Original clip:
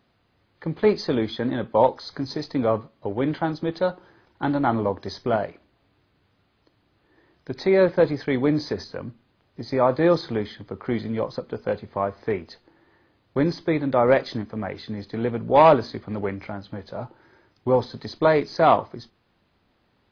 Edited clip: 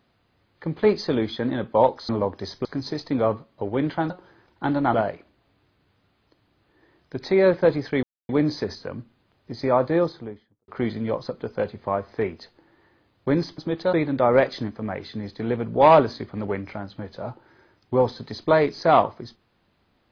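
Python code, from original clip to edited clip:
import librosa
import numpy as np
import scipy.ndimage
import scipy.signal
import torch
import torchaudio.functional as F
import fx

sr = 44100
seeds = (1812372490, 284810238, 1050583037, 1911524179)

y = fx.studio_fade_out(x, sr, start_s=9.74, length_s=1.03)
y = fx.edit(y, sr, fx.move(start_s=3.54, length_s=0.35, to_s=13.67),
    fx.move(start_s=4.73, length_s=0.56, to_s=2.09),
    fx.insert_silence(at_s=8.38, length_s=0.26), tone=tone)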